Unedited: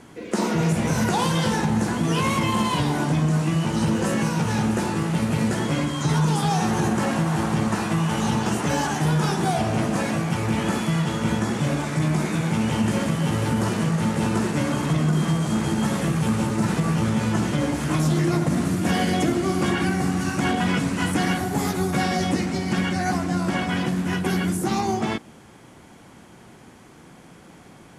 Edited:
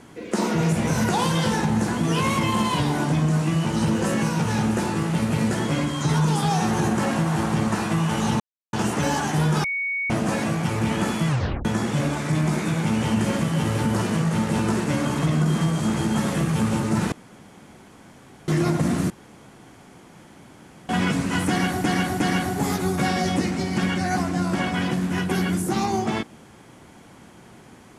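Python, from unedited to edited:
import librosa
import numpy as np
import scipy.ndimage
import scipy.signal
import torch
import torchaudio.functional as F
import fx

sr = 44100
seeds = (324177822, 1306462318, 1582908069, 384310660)

y = fx.edit(x, sr, fx.insert_silence(at_s=8.4, length_s=0.33),
    fx.bleep(start_s=9.31, length_s=0.46, hz=2230.0, db=-23.0),
    fx.tape_stop(start_s=10.95, length_s=0.37),
    fx.room_tone_fill(start_s=16.79, length_s=1.36),
    fx.room_tone_fill(start_s=18.77, length_s=1.79),
    fx.repeat(start_s=21.15, length_s=0.36, count=3), tone=tone)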